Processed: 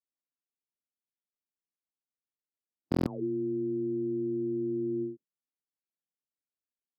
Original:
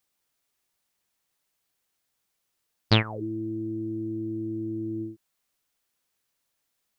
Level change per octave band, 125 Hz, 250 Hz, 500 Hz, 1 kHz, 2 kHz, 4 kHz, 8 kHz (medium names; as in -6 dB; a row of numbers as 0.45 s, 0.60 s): -9.5 dB, -0.5 dB, +2.0 dB, -12.5 dB, under -20 dB, under -25 dB, no reading